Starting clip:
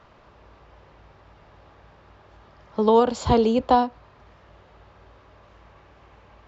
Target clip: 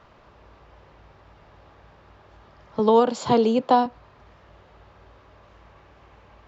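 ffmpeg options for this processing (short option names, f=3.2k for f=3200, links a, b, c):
-filter_complex "[0:a]asettb=1/sr,asplit=3[a][b][c];[a]atrim=end=2.794[d];[b]atrim=start=2.79:end=3.86,asetpts=PTS-STARTPTS,afade=t=in:d=0.004:c=qsin,afade=t=out:st=1.066:d=0.004:c=qsin,highpass=f=140:w=0.5412,highpass=f=140:w=1.3066[e];[c]atrim=start=3.856[f];[d][e]acrossfade=d=0.004:c1=hsin:c2=qsin[g];[g][f]acrossfade=d=0.004:c1=qsin:c2=hsin"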